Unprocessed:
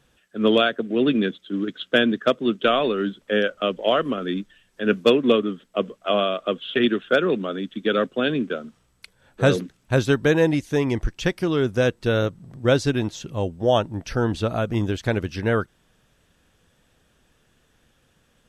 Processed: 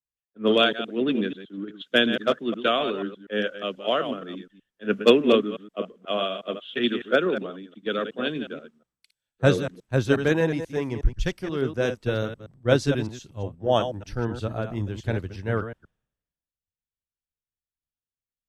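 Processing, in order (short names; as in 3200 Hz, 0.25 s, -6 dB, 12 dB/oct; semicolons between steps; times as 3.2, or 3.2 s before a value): reverse delay 0.121 s, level -7 dB; three-band expander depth 100%; gain -5 dB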